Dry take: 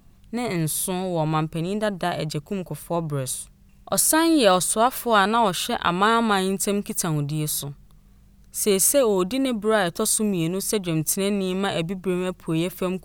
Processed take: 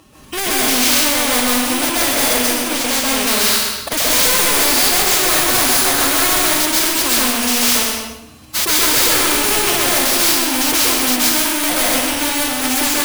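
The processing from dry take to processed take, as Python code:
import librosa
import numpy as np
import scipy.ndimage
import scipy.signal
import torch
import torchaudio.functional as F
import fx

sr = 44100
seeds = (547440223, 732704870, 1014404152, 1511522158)

p1 = fx.bit_reversed(x, sr, seeds[0], block=16)
p2 = fx.highpass(p1, sr, hz=460.0, slope=6)
p3 = fx.high_shelf(p2, sr, hz=12000.0, db=-11.5)
p4 = fx.leveller(p3, sr, passes=2)
p5 = fx.fold_sine(p4, sr, drive_db=13, ceiling_db=-6.0)
p6 = p4 + (p5 * librosa.db_to_amplitude(-6.5))
p7 = fx.pitch_keep_formants(p6, sr, semitones=8.0)
p8 = 10.0 ** (-17.5 / 20.0) * np.tanh(p7 / 10.0 ** (-17.5 / 20.0))
p9 = p8 + fx.echo_feedback(p8, sr, ms=125, feedback_pct=25, wet_db=-11.5, dry=0)
p10 = fx.rev_plate(p9, sr, seeds[1], rt60_s=0.66, hf_ratio=0.9, predelay_ms=120, drr_db=-7.5)
p11 = fx.spectral_comp(p10, sr, ratio=2.0)
y = p11 * librosa.db_to_amplitude(-3.5)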